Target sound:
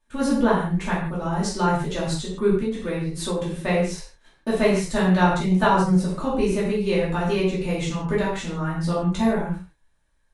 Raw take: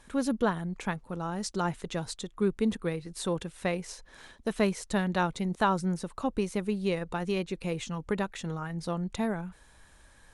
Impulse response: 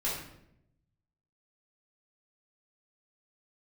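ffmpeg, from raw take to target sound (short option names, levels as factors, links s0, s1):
-filter_complex "[0:a]agate=range=0.0708:threshold=0.00447:ratio=16:detection=peak[s0];[1:a]atrim=start_sample=2205,afade=t=out:st=0.23:d=0.01,atrim=end_sample=10584[s1];[s0][s1]afir=irnorm=-1:irlink=0,asplit=3[s2][s3][s4];[s2]afade=t=out:st=2.57:d=0.02[s5];[s3]acompressor=threshold=0.0631:ratio=6,afade=t=in:st=2.57:d=0.02,afade=t=out:st=3.59:d=0.02[s6];[s4]afade=t=in:st=3.59:d=0.02[s7];[s5][s6][s7]amix=inputs=3:normalize=0,volume=1.26"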